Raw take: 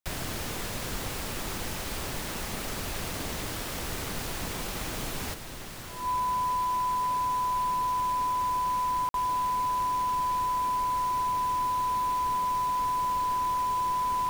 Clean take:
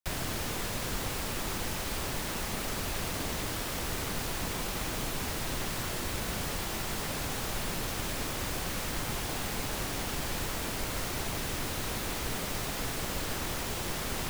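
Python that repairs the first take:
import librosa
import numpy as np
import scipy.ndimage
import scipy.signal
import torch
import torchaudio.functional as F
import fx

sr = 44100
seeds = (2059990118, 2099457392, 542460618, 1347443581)

y = fx.notch(x, sr, hz=1000.0, q=30.0)
y = fx.fix_interpolate(y, sr, at_s=(9.09,), length_ms=52.0)
y = fx.fix_level(y, sr, at_s=5.34, step_db=7.0)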